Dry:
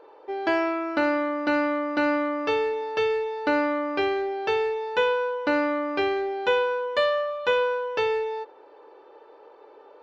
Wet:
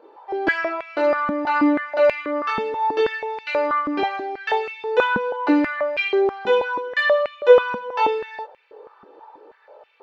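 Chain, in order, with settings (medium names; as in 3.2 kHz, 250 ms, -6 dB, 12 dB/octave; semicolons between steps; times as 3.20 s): chorus voices 6, 0.27 Hz, delay 21 ms, depth 3.1 ms; step-sequenced high-pass 6.2 Hz 220–2400 Hz; trim +2.5 dB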